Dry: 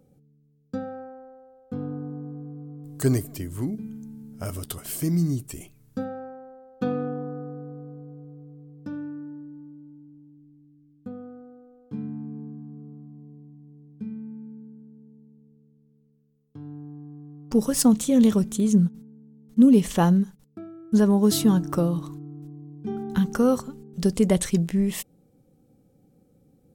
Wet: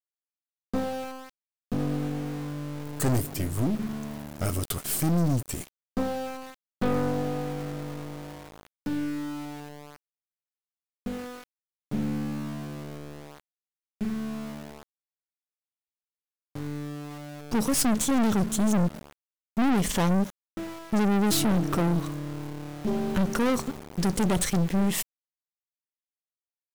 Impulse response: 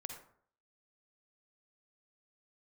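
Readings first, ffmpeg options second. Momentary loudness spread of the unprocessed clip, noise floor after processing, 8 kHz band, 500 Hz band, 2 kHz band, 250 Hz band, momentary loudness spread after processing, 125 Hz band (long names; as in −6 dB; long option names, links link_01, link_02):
23 LU, below −85 dBFS, +1.0 dB, −3.0 dB, +5.0 dB, −4.0 dB, 16 LU, −1.5 dB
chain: -af "aeval=exprs='(tanh(28.2*val(0)+0.55)-tanh(0.55))/28.2':channel_layout=same,aeval=exprs='val(0)*gte(abs(val(0)),0.00668)':channel_layout=same,volume=7.5dB"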